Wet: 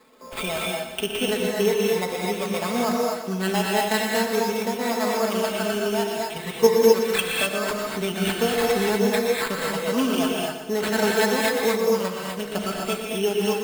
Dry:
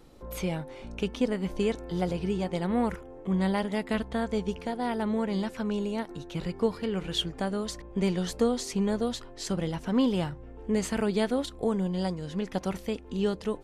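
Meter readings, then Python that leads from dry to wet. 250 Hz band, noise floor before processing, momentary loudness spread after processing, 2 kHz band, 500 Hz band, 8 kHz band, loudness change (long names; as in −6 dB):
+2.0 dB, −46 dBFS, 7 LU, +13.5 dB, +9.0 dB, +12.0 dB, +7.0 dB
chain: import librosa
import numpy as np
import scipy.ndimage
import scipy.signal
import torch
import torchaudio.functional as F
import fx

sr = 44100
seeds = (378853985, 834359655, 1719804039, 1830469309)

p1 = fx.spec_ripple(x, sr, per_octave=0.95, drift_hz=0.42, depth_db=8)
p2 = fx.weighting(p1, sr, curve='A')
p3 = fx.dereverb_blind(p2, sr, rt60_s=0.87)
p4 = p3 + 0.77 * np.pad(p3, (int(4.6 * sr / 1000.0), 0))[:len(p3)]
p5 = fx.level_steps(p4, sr, step_db=19)
p6 = p4 + (p5 * 10.0 ** (0.0 / 20.0))
p7 = fx.sample_hold(p6, sr, seeds[0], rate_hz=5900.0, jitter_pct=0)
p8 = p7 + fx.echo_feedback(p7, sr, ms=120, feedback_pct=54, wet_db=-10.0, dry=0)
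p9 = fx.rev_gated(p8, sr, seeds[1], gate_ms=280, shape='rising', drr_db=-1.5)
y = p9 * 10.0 ** (1.5 / 20.0)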